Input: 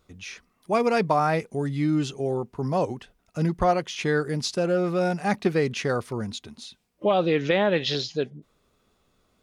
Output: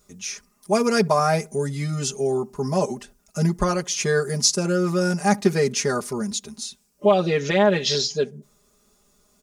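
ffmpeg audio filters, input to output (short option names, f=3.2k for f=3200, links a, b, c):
-filter_complex "[0:a]highshelf=f=4.6k:t=q:w=1.5:g=10,aecho=1:1:4.9:0.98,asplit=2[a][b];[b]adelay=69,lowpass=f=870:p=1,volume=-23.5dB,asplit=2[c][d];[d]adelay=69,lowpass=f=870:p=1,volume=0.43,asplit=2[e][f];[f]adelay=69,lowpass=f=870:p=1,volume=0.43[g];[a][c][e][g]amix=inputs=4:normalize=0"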